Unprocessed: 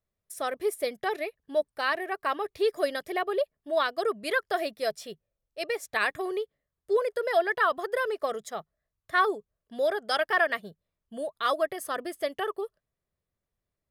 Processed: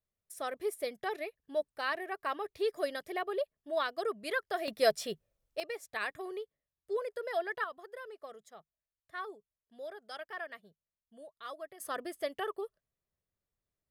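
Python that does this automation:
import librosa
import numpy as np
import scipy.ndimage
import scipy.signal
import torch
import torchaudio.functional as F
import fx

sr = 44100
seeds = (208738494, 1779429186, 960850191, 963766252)

y = fx.gain(x, sr, db=fx.steps((0.0, -6.5), (4.68, 3.0), (5.6, -9.5), (7.64, -17.5), (11.8, -5.5)))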